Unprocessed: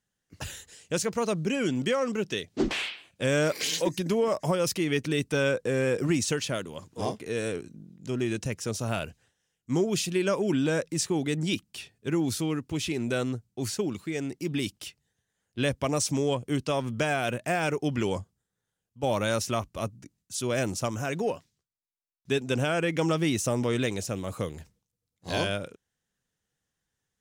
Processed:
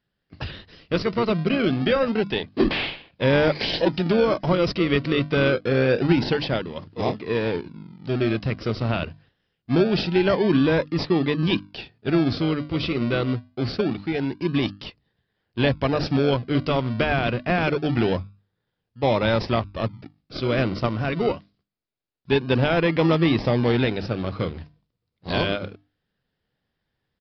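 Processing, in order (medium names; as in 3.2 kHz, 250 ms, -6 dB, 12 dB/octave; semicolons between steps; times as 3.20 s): hum notches 50/100/150/200/250/300 Hz; in parallel at -6 dB: decimation with a swept rate 41×, swing 60% 0.25 Hz; on the sum: resampled via 11.025 kHz; trim +4.5 dB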